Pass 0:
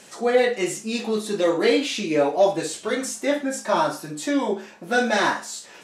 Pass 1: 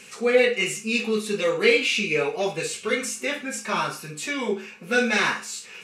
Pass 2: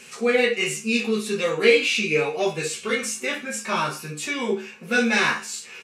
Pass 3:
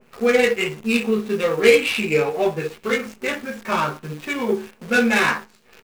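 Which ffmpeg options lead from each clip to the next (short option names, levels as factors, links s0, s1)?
-af "superequalizer=6b=0.282:8b=0.282:9b=0.447:12b=2.82"
-filter_complex "[0:a]asplit=2[s0][s1];[s1]adelay=13,volume=0.596[s2];[s0][s2]amix=inputs=2:normalize=0"
-af "adynamicsmooth=sensitivity=2:basefreq=890,acrusher=bits=8:dc=4:mix=0:aa=0.000001,adynamicequalizer=threshold=0.0178:dfrequency=2000:dqfactor=0.7:tfrequency=2000:tqfactor=0.7:attack=5:release=100:ratio=0.375:range=2.5:mode=cutabove:tftype=highshelf,volume=1.5"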